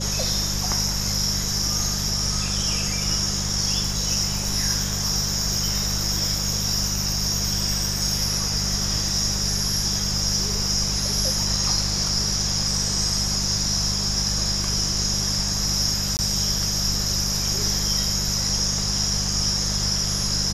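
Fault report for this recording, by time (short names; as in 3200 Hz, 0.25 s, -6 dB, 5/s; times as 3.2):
hum 50 Hz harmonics 4 -29 dBFS
16.17–16.19 gap 19 ms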